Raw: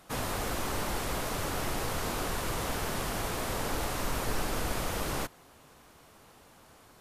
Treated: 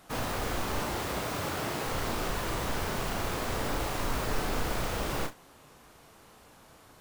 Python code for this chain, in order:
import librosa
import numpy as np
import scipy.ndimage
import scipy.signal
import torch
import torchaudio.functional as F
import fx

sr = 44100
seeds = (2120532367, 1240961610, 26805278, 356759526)

y = fx.tracing_dist(x, sr, depth_ms=0.11)
y = fx.highpass(y, sr, hz=fx.line((0.78, 43.0), (1.85, 120.0)), slope=12, at=(0.78, 1.85), fade=0.02)
y = fx.room_early_taps(y, sr, ms=(34, 71), db=(-5.5, -17.0))